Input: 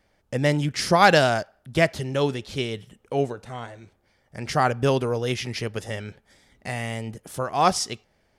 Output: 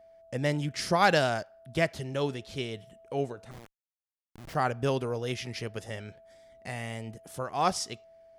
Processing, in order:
steady tone 660 Hz −46 dBFS
0:03.51–0:04.55: comparator with hysteresis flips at −31.5 dBFS
level −7 dB

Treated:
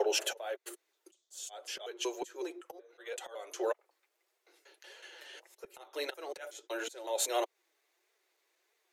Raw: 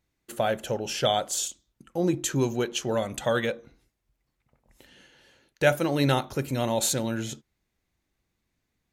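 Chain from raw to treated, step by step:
slices reordered back to front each 186 ms, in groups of 5
Butterworth high-pass 350 Hz 72 dB per octave
in parallel at +2 dB: downward compressor 8 to 1, threshold −35 dBFS, peak gain reduction 19 dB
on the sum: volume swells 713 ms
flanger 1.6 Hz, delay 4.2 ms, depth 3.2 ms, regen −23%
level +2 dB

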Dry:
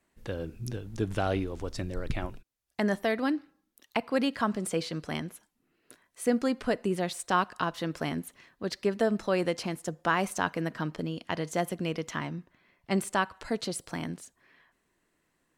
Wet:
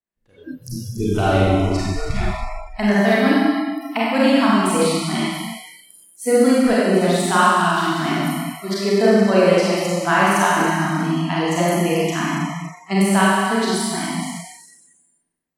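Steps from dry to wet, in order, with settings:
four-comb reverb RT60 2.2 s, combs from 31 ms, DRR −8 dB
noise reduction from a noise print of the clip's start 29 dB
level +5 dB

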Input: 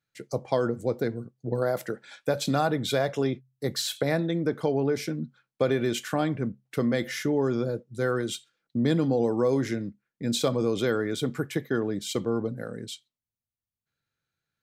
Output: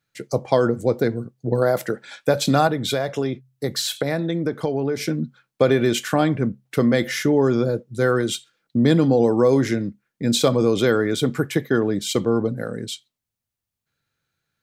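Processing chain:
0:02.67–0:05.01: downward compressor 2.5 to 1, threshold −29 dBFS, peak gain reduction 6.5 dB
level +7.5 dB

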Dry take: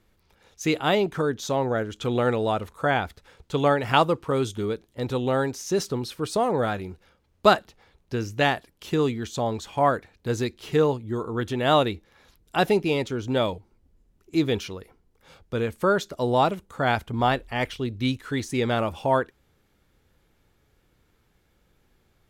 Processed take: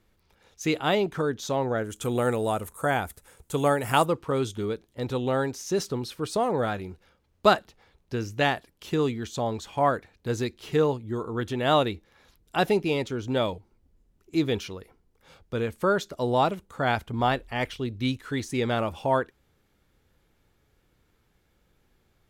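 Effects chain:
0:01.84–0:04.06: high shelf with overshoot 6,500 Hz +14 dB, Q 1.5
level −2 dB

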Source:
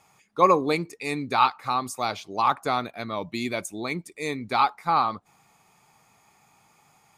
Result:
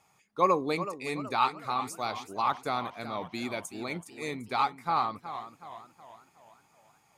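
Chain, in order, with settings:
feedback echo with a swinging delay time 374 ms, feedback 47%, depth 130 cents, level −12 dB
level −6 dB

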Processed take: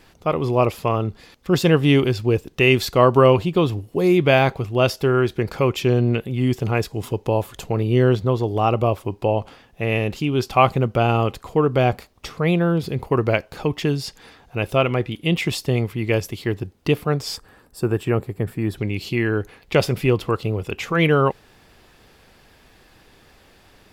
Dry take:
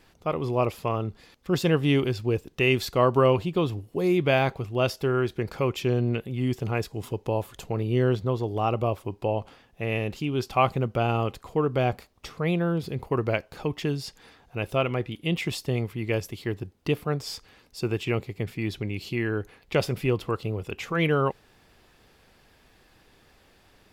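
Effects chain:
gain on a spectral selection 0:17.36–0:18.78, 1,900–7,300 Hz −10 dB
level +6.5 dB

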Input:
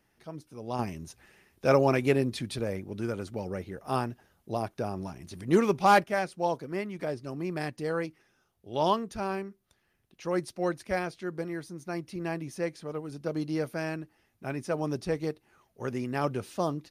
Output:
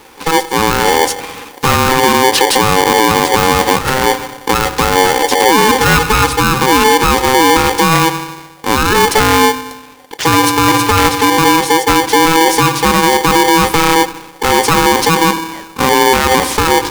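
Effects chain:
high-pass filter 140 Hz 12 dB per octave
low-shelf EQ 220 Hz +10.5 dB
downward compressor 6 to 1, threshold −26 dBFS, peak gain reduction 11.5 dB
on a send at −16 dB: convolution reverb RT60 1.1 s, pre-delay 3 ms
on the sum: boost into a limiter +30 dB
ring modulator with a square carrier 650 Hz
level −1 dB

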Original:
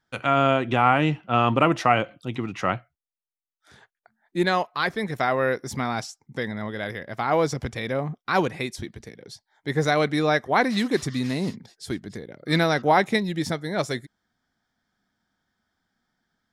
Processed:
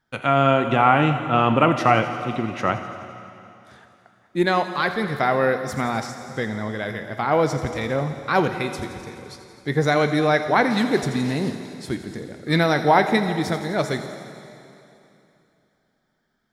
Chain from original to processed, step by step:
parametric band 6,800 Hz −4 dB 2.2 octaves
delay with a high-pass on its return 85 ms, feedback 74%, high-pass 5,200 Hz, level −9.5 dB
dense smooth reverb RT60 2.9 s, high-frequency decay 1×, DRR 7.5 dB
level +2.5 dB

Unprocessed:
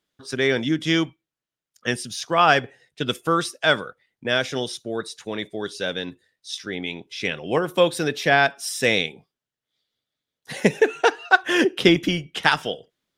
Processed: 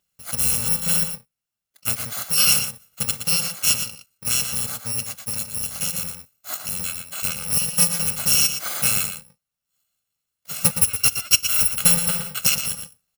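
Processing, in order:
samples in bit-reversed order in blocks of 128 samples
slap from a distant wall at 20 metres, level −8 dB
in parallel at −1 dB: downward compressor, threshold −29 dBFS, peak gain reduction 18.5 dB
on the sum: level −2 dB

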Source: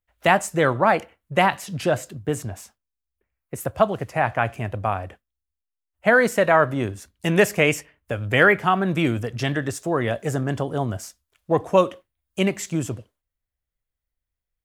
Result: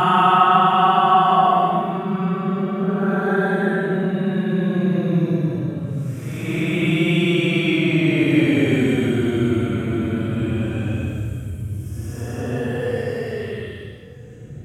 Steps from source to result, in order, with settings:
extreme stretch with random phases 22×, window 0.05 s, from 0:08.67
level +2 dB

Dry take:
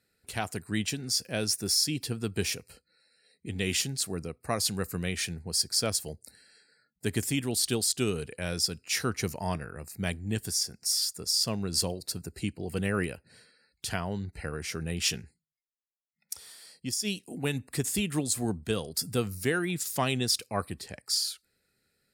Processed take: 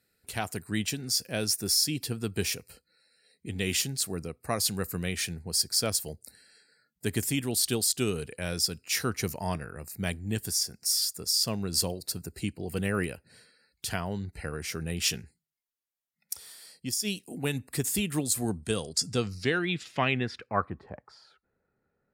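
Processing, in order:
low-pass filter sweep 15,000 Hz → 1,000 Hz, 0:18.25–0:20.89

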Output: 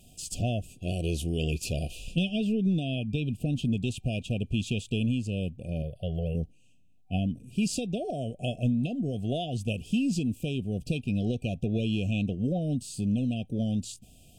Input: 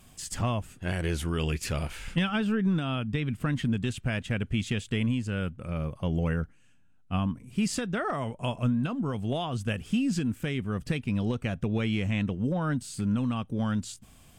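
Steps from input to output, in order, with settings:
0:05.82–0:06.35: phaser with its sweep stopped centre 1,400 Hz, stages 8
brick-wall band-stop 760–2,400 Hz

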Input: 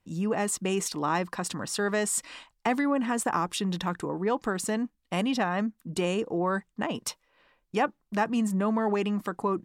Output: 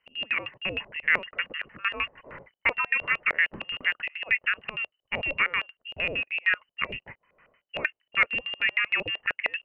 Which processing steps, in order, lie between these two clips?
voice inversion scrambler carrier 3,000 Hz
auto-filter low-pass square 6.5 Hz 590–1,900 Hz

